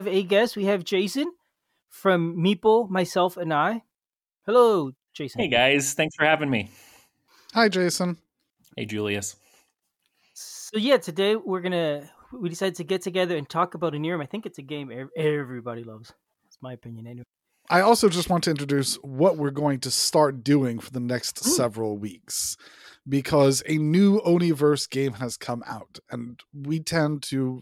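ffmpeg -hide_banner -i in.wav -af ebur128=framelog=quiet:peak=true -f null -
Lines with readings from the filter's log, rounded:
Integrated loudness:
  I:         -23.6 LUFS
  Threshold: -34.7 LUFS
Loudness range:
  LRA:         5.8 LU
  Threshold: -44.7 LUFS
  LRA low:   -28.6 LUFS
  LRA high:  -22.7 LUFS
True peak:
  Peak:       -5.9 dBFS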